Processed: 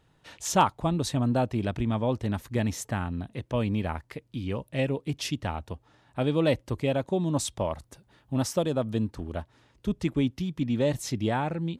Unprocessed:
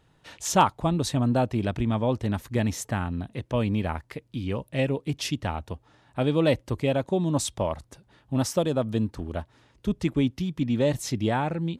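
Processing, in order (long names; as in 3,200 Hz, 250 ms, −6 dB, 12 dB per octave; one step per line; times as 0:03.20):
0:07.74–0:08.35: high-shelf EQ 12,000 Hz +7.5 dB
level −2 dB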